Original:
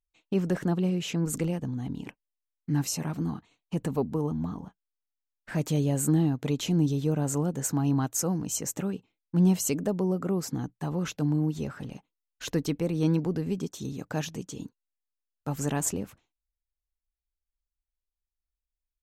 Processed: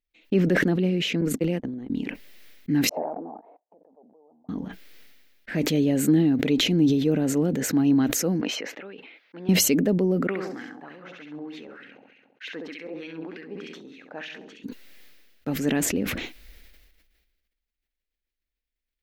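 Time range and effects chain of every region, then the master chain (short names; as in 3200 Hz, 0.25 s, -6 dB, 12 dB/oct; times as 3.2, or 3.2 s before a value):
1.21–1.9 gate -31 dBFS, range -59 dB + mismatched tape noise reduction decoder only
2.89–4.49 EQ curve 420 Hz 0 dB, 1900 Hz -14 dB, 2900 Hz -20 dB, 9200 Hz -14 dB + level quantiser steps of 20 dB + Butterworth band-pass 760 Hz, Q 2.5
8.41–9.49 HPF 720 Hz + air absorption 320 m
10.27–14.64 flutter echo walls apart 11.6 m, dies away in 0.69 s + LFO band-pass sine 3.3 Hz 780–2300 Hz
whole clip: graphic EQ 125/250/500/1000/2000/4000/8000 Hz -7/+9/+5/-9/+10/+4/-9 dB; sustainer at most 36 dB/s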